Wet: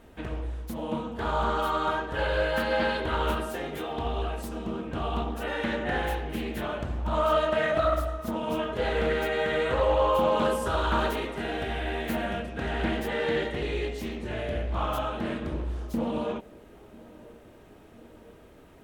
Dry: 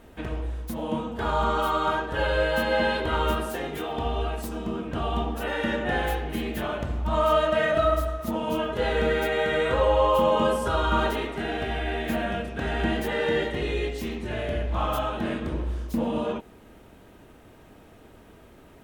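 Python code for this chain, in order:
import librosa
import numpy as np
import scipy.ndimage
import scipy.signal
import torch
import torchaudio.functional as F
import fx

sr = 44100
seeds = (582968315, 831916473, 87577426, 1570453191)

y = fx.high_shelf(x, sr, hz=7800.0, db=6.0, at=(10.35, 12.4))
y = fx.echo_banded(y, sr, ms=998, feedback_pct=71, hz=380.0, wet_db=-20.5)
y = fx.doppler_dist(y, sr, depth_ms=0.3)
y = y * 10.0 ** (-2.5 / 20.0)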